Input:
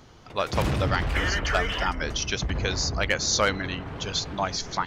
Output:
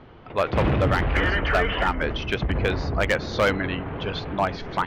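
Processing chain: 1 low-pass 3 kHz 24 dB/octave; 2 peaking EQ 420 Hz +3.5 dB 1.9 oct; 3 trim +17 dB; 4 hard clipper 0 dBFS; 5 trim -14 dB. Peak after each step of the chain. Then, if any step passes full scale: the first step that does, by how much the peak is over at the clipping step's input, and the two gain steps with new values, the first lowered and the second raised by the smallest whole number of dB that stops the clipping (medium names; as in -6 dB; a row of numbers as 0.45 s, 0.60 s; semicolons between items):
-9.5 dBFS, -8.5 dBFS, +8.5 dBFS, 0.0 dBFS, -14.0 dBFS; step 3, 8.5 dB; step 3 +8 dB, step 5 -5 dB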